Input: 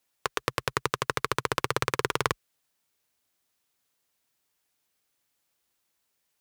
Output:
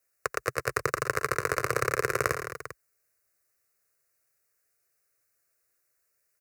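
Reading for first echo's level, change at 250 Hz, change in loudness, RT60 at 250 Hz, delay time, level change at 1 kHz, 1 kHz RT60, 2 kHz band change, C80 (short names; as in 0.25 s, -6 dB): -10.0 dB, -2.5 dB, 0.0 dB, none, 87 ms, -1.0 dB, none, +2.0 dB, none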